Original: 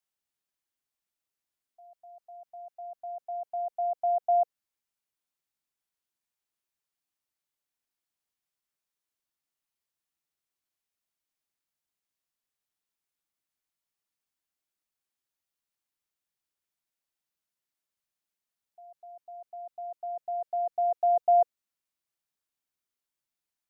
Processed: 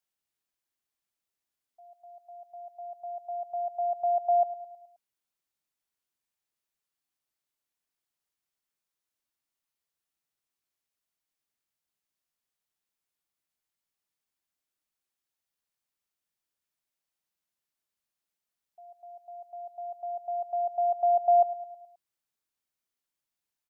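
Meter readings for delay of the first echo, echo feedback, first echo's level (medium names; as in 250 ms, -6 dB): 106 ms, 53%, -15.5 dB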